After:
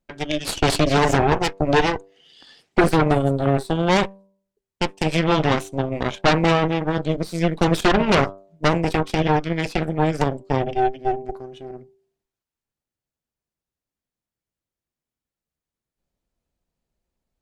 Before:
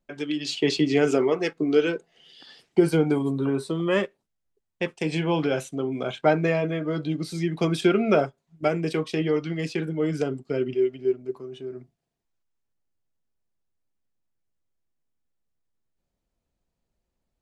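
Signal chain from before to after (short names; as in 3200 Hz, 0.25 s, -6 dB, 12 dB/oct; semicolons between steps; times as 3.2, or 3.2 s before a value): de-hum 97.34 Hz, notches 11; added harmonics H 8 -8 dB, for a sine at -6.5 dBFS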